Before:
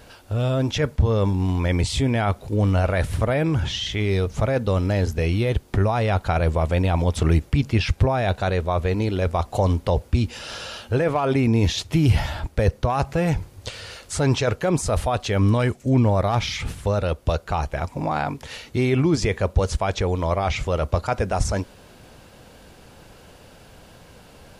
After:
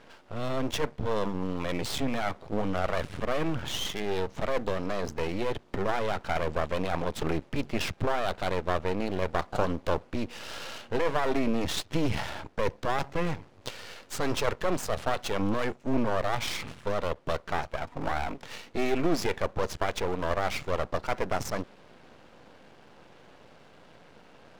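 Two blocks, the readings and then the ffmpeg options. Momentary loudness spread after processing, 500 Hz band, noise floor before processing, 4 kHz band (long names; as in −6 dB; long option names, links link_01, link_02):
6 LU, −6.5 dB, −49 dBFS, −5.5 dB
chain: -af "adynamicsmooth=sensitivity=6:basefreq=3500,highpass=180,aeval=exprs='max(val(0),0)':channel_layout=same"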